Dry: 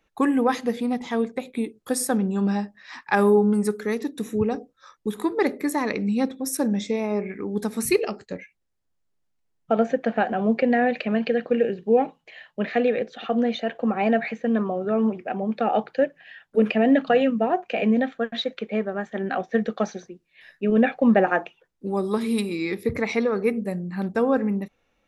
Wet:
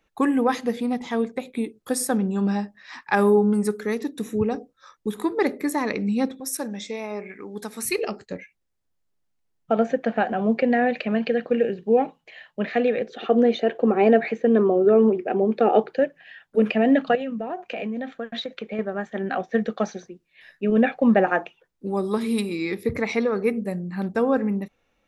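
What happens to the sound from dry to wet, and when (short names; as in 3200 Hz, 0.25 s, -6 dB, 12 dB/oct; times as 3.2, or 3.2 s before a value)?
6.4–7.98 low shelf 470 Hz -11.5 dB
13.09–15.99 bell 390 Hz +13 dB 0.67 oct
17.15–18.79 compressor, threshold -26 dBFS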